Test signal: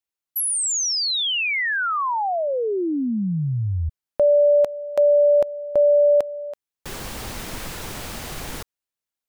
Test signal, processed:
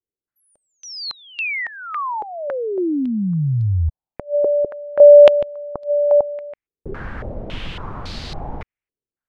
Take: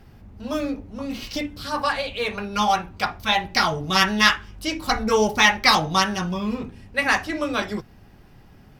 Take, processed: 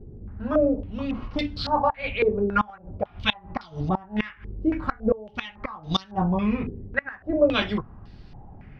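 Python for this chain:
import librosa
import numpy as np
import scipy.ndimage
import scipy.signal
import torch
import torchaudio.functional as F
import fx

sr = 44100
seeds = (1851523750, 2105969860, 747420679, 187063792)

y = fx.low_shelf(x, sr, hz=240.0, db=10.5)
y = fx.gate_flip(y, sr, shuts_db=-9.0, range_db=-26)
y = fx.filter_held_lowpass(y, sr, hz=3.6, low_hz=420.0, high_hz=4300.0)
y = F.gain(torch.from_numpy(y), -3.5).numpy()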